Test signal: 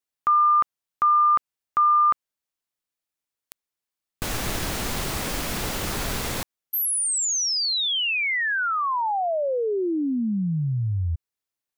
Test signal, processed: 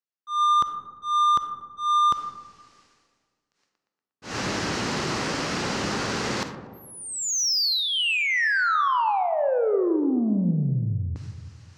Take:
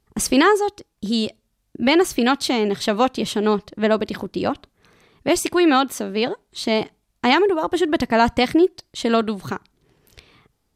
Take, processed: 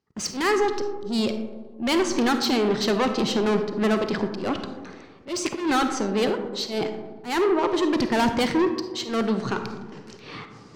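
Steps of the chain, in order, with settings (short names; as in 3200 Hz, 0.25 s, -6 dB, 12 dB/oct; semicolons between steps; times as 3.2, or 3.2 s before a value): gate with hold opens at -46 dBFS, hold 60 ms, range -13 dB; dynamic EQ 290 Hz, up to -3 dB, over -35 dBFS, Q 4.8; reverse; upward compressor, threshold -25 dBFS; reverse; speaker cabinet 140–6100 Hz, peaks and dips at 660 Hz -5 dB, 2300 Hz -3 dB, 3500 Hz -6 dB; soft clip -22.5 dBFS; on a send: tape echo 0.117 s, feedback 60%, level -23 dB, low-pass 4800 Hz; on the sum: auto swell 0.167 s; digital reverb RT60 1.5 s, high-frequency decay 0.25×, pre-delay 10 ms, DRR 7 dB; gain +4 dB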